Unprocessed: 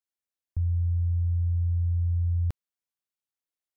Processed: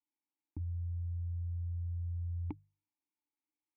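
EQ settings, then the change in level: vowel filter u; air absorption 410 m; notches 50/100/150 Hz; +14.5 dB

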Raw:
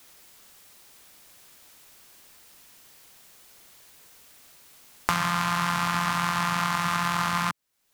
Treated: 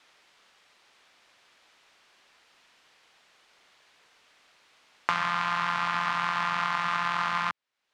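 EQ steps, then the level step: LPF 3400 Hz 12 dB/oct; low shelf 200 Hz -9 dB; low shelf 430 Hz -7.5 dB; 0.0 dB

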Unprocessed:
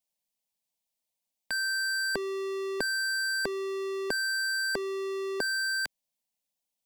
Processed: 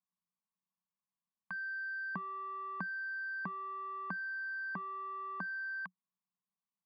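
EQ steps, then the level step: double band-pass 450 Hz, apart 2.6 oct; air absorption 310 m; +8.0 dB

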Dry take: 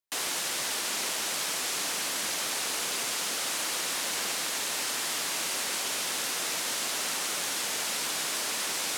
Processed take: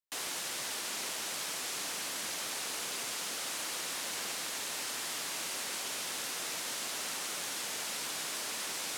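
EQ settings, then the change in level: low shelf 73 Hz +7 dB; -6.5 dB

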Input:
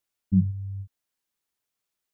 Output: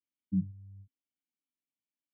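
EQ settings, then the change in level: vocal tract filter i; HPF 110 Hz; 0.0 dB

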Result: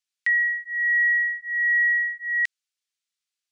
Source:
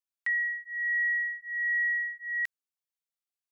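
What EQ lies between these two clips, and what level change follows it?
HPF 1500 Hz; air absorption 96 m; tilt +4 dB/oct; +6.0 dB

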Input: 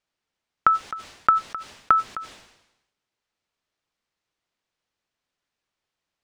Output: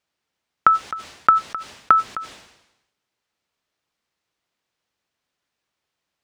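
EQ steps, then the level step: HPF 41 Hz; notches 50/100 Hz; +3.5 dB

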